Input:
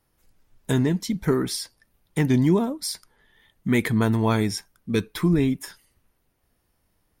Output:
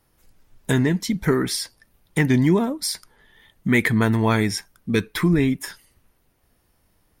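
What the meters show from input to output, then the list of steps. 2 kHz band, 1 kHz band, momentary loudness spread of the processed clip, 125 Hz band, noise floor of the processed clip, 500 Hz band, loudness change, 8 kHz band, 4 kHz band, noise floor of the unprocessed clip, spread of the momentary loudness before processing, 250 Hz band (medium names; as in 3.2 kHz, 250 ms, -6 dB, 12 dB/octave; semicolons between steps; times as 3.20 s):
+7.5 dB, +3.0 dB, 12 LU, +2.0 dB, -65 dBFS, +2.0 dB, +2.5 dB, +3.5 dB, +3.5 dB, -71 dBFS, 13 LU, +2.0 dB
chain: dynamic bell 1.9 kHz, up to +7 dB, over -46 dBFS, Q 1.9; in parallel at -1 dB: compression, threshold -30 dBFS, peak gain reduction 14.5 dB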